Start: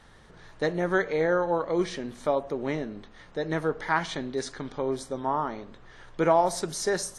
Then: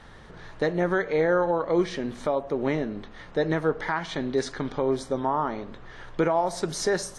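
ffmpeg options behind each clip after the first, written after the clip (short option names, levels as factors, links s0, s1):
-af "highshelf=f=7200:g=-11.5,alimiter=limit=0.0944:level=0:latency=1:release=389,volume=2.11"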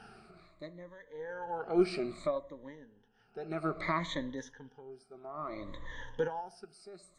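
-af "afftfilt=real='re*pow(10,20/40*sin(2*PI*(1.1*log(max(b,1)*sr/1024/100)/log(2)-(-0.61)*(pts-256)/sr)))':imag='im*pow(10,20/40*sin(2*PI*(1.1*log(max(b,1)*sr/1024/100)/log(2)-(-0.61)*(pts-256)/sr)))':win_size=1024:overlap=0.75,aeval=exprs='0.447*(cos(1*acos(clip(val(0)/0.447,-1,1)))-cos(1*PI/2))+0.0251*(cos(2*acos(clip(val(0)/0.447,-1,1)))-cos(2*PI/2))':c=same,aeval=exprs='val(0)*pow(10,-24*(0.5-0.5*cos(2*PI*0.51*n/s))/20)':c=same,volume=0.447"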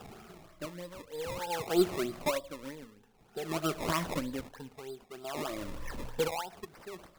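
-filter_complex "[0:a]asplit=2[s0][s1];[s1]acompressor=threshold=0.00794:ratio=6,volume=0.891[s2];[s0][s2]amix=inputs=2:normalize=0,acrusher=samples=20:mix=1:aa=0.000001:lfo=1:lforange=20:lforate=3.2"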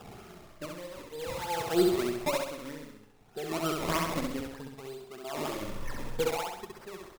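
-af "aecho=1:1:66|132|198|264|330|396|462:0.708|0.354|0.177|0.0885|0.0442|0.0221|0.0111"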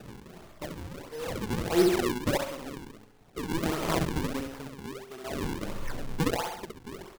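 -af "acrusher=samples=40:mix=1:aa=0.000001:lfo=1:lforange=64:lforate=1.5,volume=1.26"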